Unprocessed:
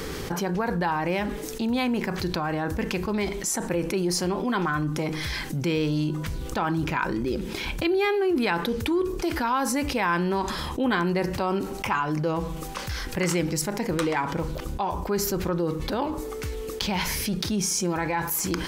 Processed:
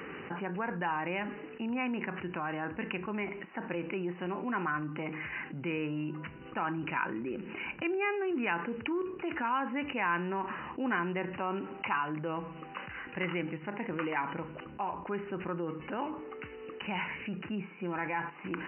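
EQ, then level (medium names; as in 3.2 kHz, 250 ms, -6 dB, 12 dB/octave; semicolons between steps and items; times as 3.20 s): high-pass 230 Hz 12 dB/octave; brick-wall FIR low-pass 3 kHz; peaking EQ 500 Hz -6.5 dB 1.5 oct; -4.0 dB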